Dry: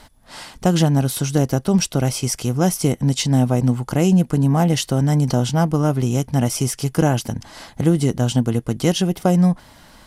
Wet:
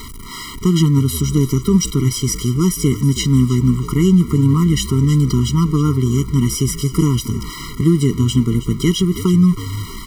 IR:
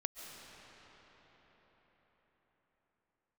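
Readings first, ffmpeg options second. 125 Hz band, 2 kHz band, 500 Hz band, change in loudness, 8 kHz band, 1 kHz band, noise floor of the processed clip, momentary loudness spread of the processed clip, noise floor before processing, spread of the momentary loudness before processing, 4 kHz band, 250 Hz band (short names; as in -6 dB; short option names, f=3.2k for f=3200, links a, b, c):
+3.5 dB, -1.5 dB, -1.5 dB, +3.0 dB, +2.0 dB, -5.0 dB, -31 dBFS, 6 LU, -49 dBFS, 6 LU, +2.5 dB, +3.5 dB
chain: -filter_complex "[0:a]aeval=exprs='val(0)+0.5*0.0376*sgn(val(0))':c=same,asplit=4[a][b][c][d];[b]adelay=320,afreqshift=-77,volume=-13.5dB[e];[c]adelay=640,afreqshift=-154,volume=-23.4dB[f];[d]adelay=960,afreqshift=-231,volume=-33.3dB[g];[a][e][f][g]amix=inputs=4:normalize=0,afftfilt=real='re*eq(mod(floor(b*sr/1024/470),2),0)':imag='im*eq(mod(floor(b*sr/1024/470),2),0)':win_size=1024:overlap=0.75,volume=2.5dB"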